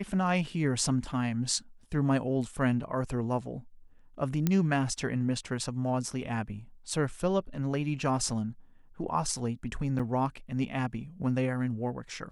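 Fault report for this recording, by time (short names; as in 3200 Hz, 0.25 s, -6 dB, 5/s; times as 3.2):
4.47 pop -13 dBFS
9.99–10 gap 5.6 ms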